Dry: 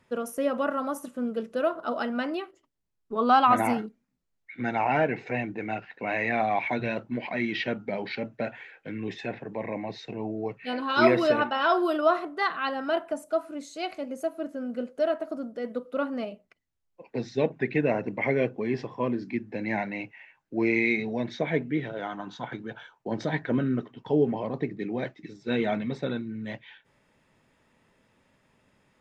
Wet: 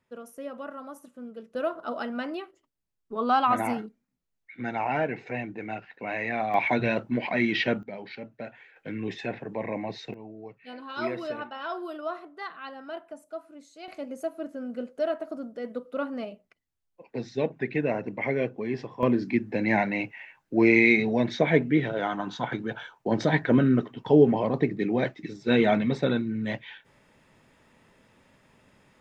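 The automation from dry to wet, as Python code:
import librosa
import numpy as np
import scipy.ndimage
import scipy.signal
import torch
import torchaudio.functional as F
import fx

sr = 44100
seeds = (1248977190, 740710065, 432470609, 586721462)

y = fx.gain(x, sr, db=fx.steps((0.0, -11.0), (1.55, -3.0), (6.54, 4.0), (7.83, -7.5), (8.76, 1.0), (10.14, -11.0), (13.88, -2.0), (19.03, 5.5)))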